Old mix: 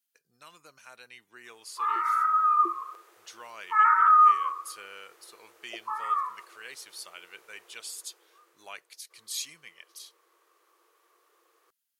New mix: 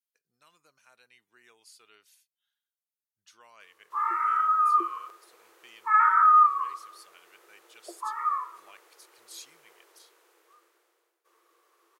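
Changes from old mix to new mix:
speech -10.5 dB; background: entry +2.15 s

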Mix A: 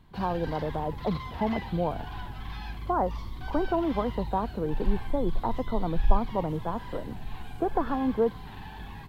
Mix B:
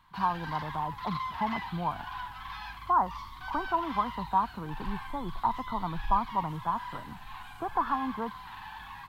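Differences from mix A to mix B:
speech: add tilt EQ -3.5 dB/octave; master: add resonant low shelf 720 Hz -12.5 dB, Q 3

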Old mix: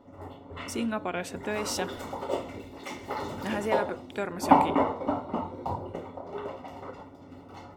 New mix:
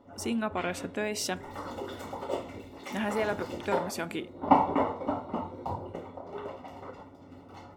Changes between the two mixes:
speech: entry -0.50 s; background: send -11.5 dB

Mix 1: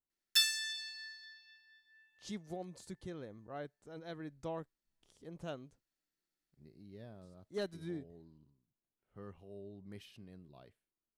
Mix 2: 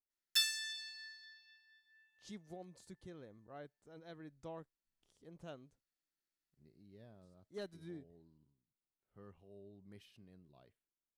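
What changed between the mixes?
speech -7.0 dB; background -3.5 dB

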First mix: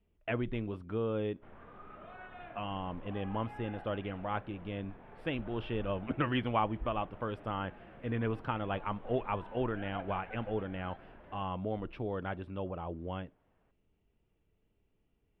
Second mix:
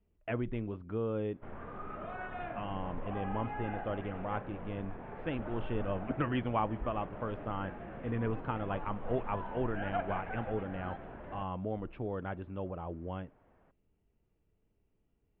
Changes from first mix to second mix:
background +9.5 dB; master: add distance through air 370 m

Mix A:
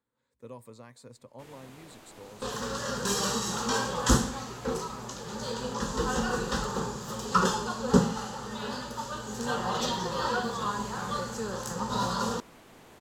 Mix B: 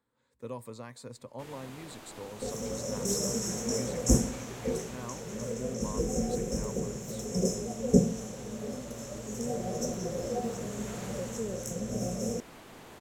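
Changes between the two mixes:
speech +5.0 dB; first sound +3.5 dB; second sound: add brick-wall FIR band-stop 750–5200 Hz

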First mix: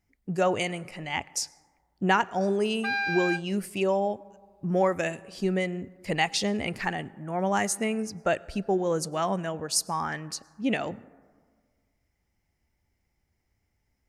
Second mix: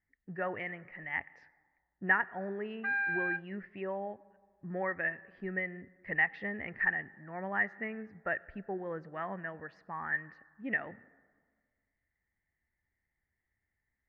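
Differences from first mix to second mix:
speech: add distance through air 100 m; master: add four-pole ladder low-pass 1.9 kHz, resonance 85%

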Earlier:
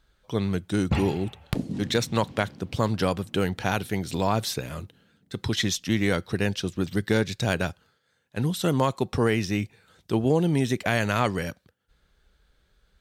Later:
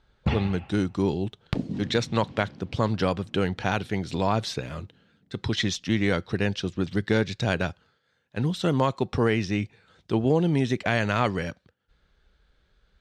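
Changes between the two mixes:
first sound: entry -0.65 s; master: add low-pass 5.2 kHz 12 dB/octave

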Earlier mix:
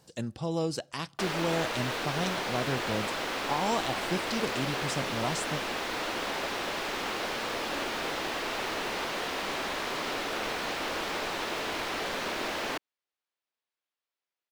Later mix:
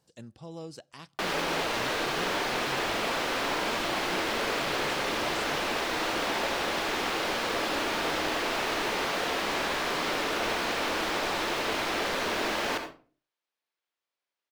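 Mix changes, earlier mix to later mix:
speech -11.0 dB; reverb: on, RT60 0.40 s

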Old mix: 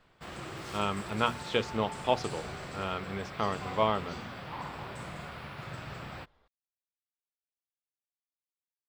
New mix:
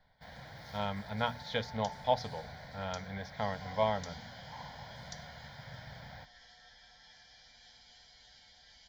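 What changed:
first sound -4.5 dB; second sound: unmuted; master: add static phaser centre 1.8 kHz, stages 8

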